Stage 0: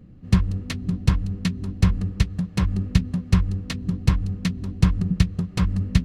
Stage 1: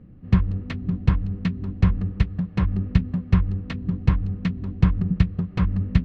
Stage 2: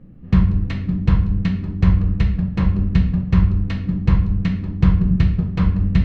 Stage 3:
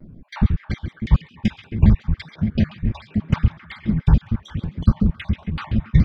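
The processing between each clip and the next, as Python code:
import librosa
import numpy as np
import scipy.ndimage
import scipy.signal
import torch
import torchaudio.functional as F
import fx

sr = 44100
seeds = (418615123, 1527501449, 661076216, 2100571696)

y1 = scipy.signal.sosfilt(scipy.signal.butter(2, 2400.0, 'lowpass', fs=sr, output='sos'), x)
y2 = fx.room_shoebox(y1, sr, seeds[0], volume_m3=140.0, walls='mixed', distance_m=0.73)
y2 = F.gain(torch.from_numpy(y2), 1.0).numpy()
y3 = fx.spec_dropout(y2, sr, seeds[1], share_pct=57)
y3 = fx.echo_stepped(y3, sr, ms=133, hz=2600.0, octaves=-0.7, feedback_pct=70, wet_db=-8.0)
y3 = fx.vibrato_shape(y3, sr, shape='square', rate_hz=7.0, depth_cents=250.0)
y3 = F.gain(torch.from_numpy(y3), 1.5).numpy()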